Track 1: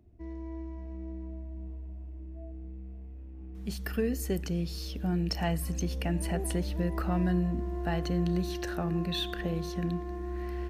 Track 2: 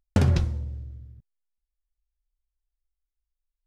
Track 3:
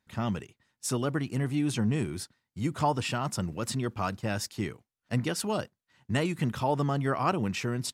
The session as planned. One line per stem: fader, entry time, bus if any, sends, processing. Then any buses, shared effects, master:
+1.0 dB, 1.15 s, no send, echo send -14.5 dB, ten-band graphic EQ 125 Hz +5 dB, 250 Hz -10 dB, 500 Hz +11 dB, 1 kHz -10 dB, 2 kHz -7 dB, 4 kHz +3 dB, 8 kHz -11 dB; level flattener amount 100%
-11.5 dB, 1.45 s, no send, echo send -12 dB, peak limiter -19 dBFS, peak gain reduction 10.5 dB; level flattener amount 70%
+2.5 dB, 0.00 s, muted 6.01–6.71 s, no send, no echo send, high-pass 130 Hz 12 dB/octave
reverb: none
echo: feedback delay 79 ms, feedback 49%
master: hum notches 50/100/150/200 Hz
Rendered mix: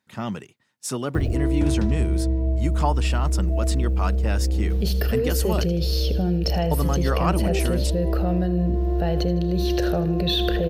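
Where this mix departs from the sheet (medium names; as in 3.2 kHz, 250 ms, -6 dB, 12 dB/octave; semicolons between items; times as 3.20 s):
stem 2: missing peak limiter -19 dBFS, peak gain reduction 10.5 dB; master: missing hum notches 50/100/150/200 Hz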